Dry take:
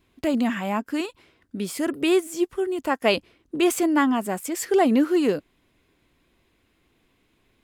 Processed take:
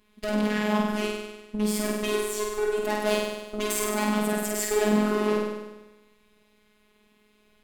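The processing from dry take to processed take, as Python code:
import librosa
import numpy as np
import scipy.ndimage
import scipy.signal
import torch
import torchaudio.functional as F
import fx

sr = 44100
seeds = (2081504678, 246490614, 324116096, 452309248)

y = fx.tube_stage(x, sr, drive_db=29.0, bias=0.75)
y = fx.room_flutter(y, sr, wall_m=8.5, rt60_s=1.1)
y = fx.robotise(y, sr, hz=211.0)
y = y * librosa.db_to_amplitude(6.5)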